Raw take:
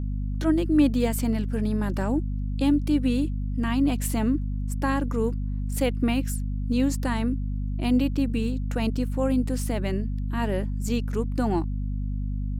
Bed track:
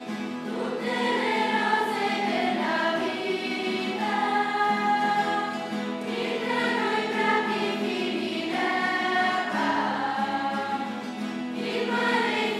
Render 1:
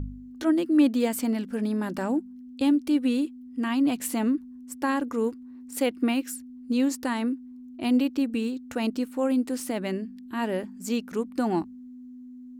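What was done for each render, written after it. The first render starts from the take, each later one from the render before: de-hum 50 Hz, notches 4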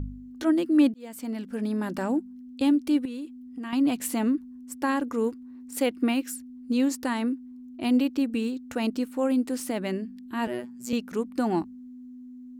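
0.94–2.05 s: fade in equal-power; 3.05–3.73 s: compression 8:1, threshold -32 dBFS; 10.47–10.93 s: robot voice 122 Hz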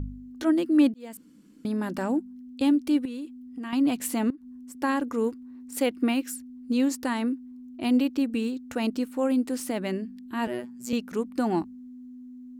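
1.17–1.65 s: room tone; 4.30–4.75 s: compression 8:1, threshold -40 dBFS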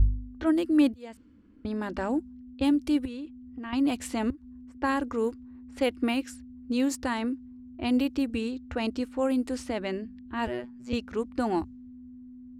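level-controlled noise filter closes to 1.7 kHz, open at -20.5 dBFS; resonant low shelf 110 Hz +11.5 dB, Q 3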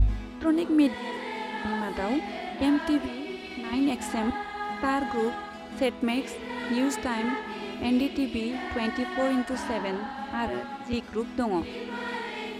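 add bed track -9.5 dB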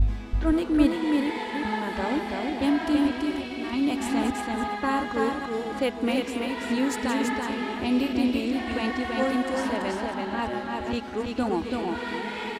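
chunks repeated in reverse 260 ms, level -8 dB; on a send: delay 333 ms -3.5 dB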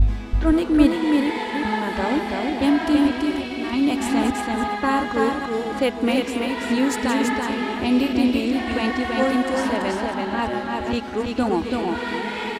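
trim +5 dB

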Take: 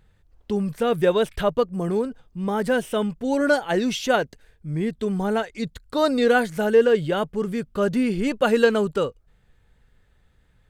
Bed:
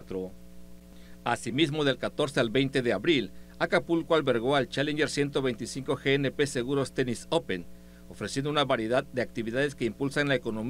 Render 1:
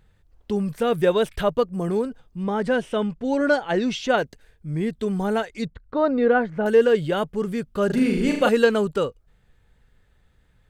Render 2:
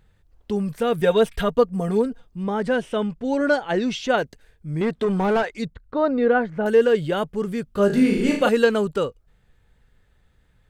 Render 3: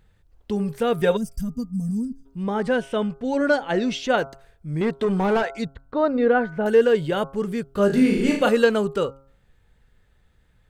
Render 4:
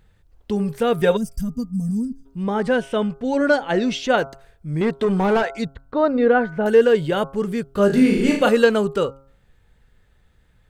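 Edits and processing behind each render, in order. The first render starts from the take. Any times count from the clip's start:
2.43–4.18 s: distance through air 76 m; 5.65–6.66 s: low-pass 1.6 kHz; 7.86–8.49 s: flutter echo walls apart 6.6 m, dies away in 0.63 s
1.00–2.25 s: comb 4.3 ms; 4.81–5.52 s: overdrive pedal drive 21 dB, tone 1.4 kHz, clips at -12.5 dBFS; 7.75–8.37 s: doubling 20 ms -4 dB
de-hum 135.9 Hz, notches 11; 1.17–2.26 s: time-frequency box 270–4600 Hz -26 dB
trim +2.5 dB

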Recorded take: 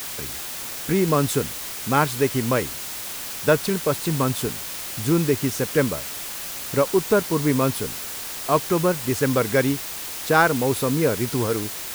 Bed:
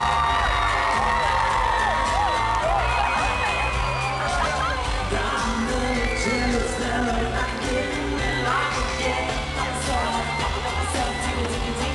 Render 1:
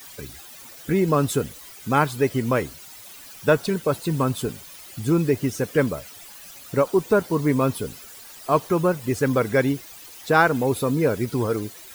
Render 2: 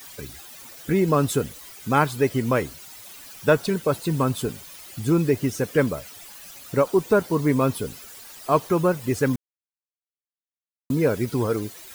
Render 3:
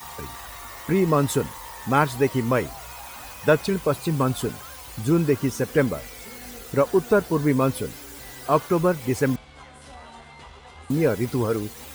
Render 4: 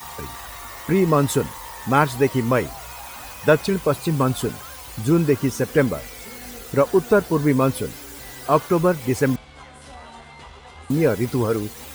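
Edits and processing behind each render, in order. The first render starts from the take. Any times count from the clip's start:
noise reduction 14 dB, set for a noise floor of -33 dBFS
9.36–10.90 s: mute
add bed -20 dB
trim +2.5 dB

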